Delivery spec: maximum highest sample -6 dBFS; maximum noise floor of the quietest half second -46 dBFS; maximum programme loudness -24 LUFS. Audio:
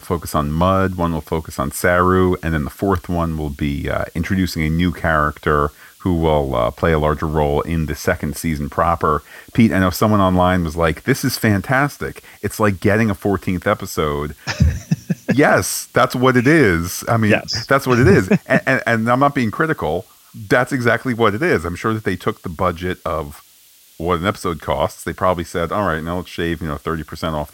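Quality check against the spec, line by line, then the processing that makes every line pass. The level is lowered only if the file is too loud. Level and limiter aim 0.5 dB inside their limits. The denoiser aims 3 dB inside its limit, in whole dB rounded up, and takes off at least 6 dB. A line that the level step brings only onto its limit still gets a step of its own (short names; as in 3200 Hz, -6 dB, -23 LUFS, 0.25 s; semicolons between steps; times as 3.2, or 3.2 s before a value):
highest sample -1.5 dBFS: fail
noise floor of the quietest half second -49 dBFS: OK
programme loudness -18.0 LUFS: fail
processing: gain -6.5 dB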